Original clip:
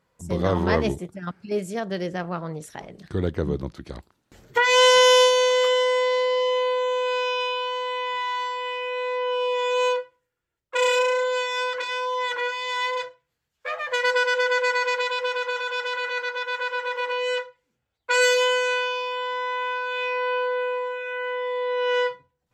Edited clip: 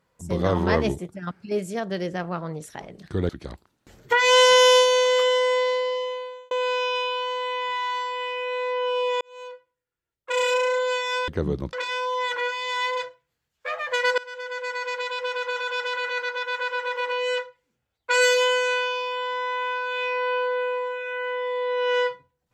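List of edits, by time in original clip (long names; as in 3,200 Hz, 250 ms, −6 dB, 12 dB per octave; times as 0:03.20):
0:03.29–0:03.74: move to 0:11.73
0:06.04–0:06.96: fade out
0:09.66–0:11.22: fade in
0:14.18–0:15.67: fade in linear, from −20.5 dB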